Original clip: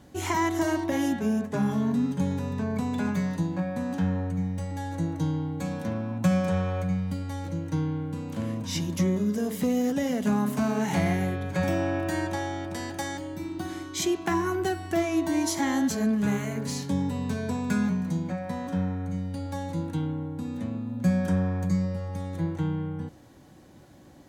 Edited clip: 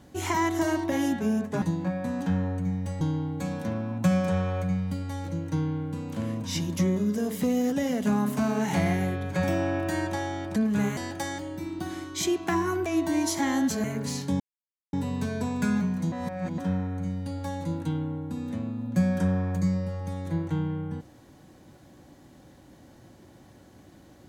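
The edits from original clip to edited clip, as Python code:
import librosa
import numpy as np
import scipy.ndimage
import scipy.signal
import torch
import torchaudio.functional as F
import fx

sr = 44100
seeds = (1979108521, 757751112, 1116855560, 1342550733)

y = fx.edit(x, sr, fx.cut(start_s=1.62, length_s=1.72),
    fx.cut(start_s=4.73, length_s=0.48),
    fx.cut(start_s=14.65, length_s=0.41),
    fx.move(start_s=16.04, length_s=0.41, to_s=12.76),
    fx.insert_silence(at_s=17.01, length_s=0.53),
    fx.reverse_span(start_s=18.2, length_s=0.46), tone=tone)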